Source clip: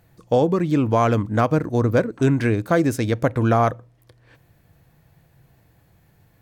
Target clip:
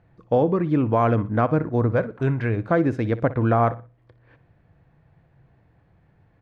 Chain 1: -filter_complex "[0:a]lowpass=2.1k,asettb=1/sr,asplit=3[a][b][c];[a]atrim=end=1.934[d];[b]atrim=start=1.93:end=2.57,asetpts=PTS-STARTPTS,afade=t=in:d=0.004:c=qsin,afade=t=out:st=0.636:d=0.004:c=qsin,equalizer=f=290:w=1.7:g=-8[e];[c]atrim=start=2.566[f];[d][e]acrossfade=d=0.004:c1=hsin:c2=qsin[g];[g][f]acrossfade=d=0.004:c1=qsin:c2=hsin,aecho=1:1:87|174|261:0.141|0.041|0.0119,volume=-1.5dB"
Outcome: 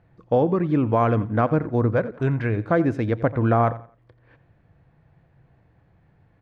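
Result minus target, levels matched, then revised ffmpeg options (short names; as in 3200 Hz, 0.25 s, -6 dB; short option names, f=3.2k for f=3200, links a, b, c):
echo 27 ms late
-filter_complex "[0:a]lowpass=2.1k,asettb=1/sr,asplit=3[a][b][c];[a]atrim=end=1.934[d];[b]atrim=start=1.93:end=2.57,asetpts=PTS-STARTPTS,afade=t=in:d=0.004:c=qsin,afade=t=out:st=0.636:d=0.004:c=qsin,equalizer=f=290:w=1.7:g=-8[e];[c]atrim=start=2.566[f];[d][e]acrossfade=d=0.004:c1=hsin:c2=qsin[g];[g][f]acrossfade=d=0.004:c1=qsin:c2=hsin,aecho=1:1:60|120|180:0.141|0.041|0.0119,volume=-1.5dB"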